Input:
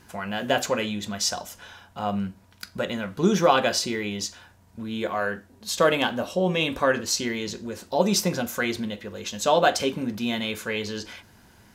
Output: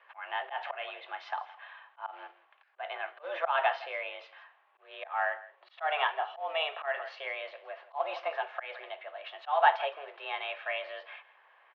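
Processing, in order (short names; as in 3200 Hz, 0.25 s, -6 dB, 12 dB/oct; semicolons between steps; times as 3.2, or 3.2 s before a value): high shelf 2200 Hz -5.5 dB; echo 0.164 s -18.5 dB; companded quantiser 6-bit; auto swell 0.172 s; mistuned SSB +150 Hz 510–2900 Hz; gain -1 dB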